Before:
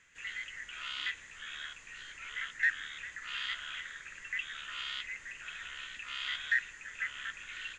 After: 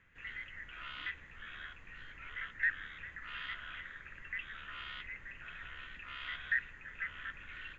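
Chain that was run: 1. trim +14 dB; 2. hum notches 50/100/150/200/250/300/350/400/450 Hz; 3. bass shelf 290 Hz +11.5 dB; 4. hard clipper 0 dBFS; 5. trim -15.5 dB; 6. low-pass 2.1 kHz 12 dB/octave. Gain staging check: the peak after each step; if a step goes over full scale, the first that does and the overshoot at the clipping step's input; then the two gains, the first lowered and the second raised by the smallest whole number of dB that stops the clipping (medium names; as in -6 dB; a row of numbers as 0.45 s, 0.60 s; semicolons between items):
-4.0 dBFS, -4.0 dBFS, -3.5 dBFS, -3.5 dBFS, -19.0 dBFS, -21.0 dBFS; nothing clips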